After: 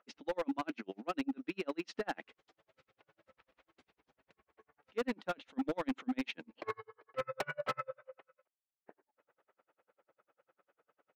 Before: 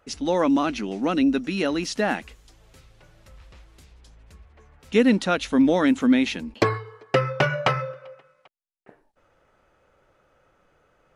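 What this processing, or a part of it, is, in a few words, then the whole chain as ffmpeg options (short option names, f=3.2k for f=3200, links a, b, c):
helicopter radio: -af "highpass=310,lowpass=2.7k,aeval=exprs='val(0)*pow(10,-40*(0.5-0.5*cos(2*PI*10*n/s))/20)':c=same,asoftclip=type=hard:threshold=-25dB,volume=-4dB"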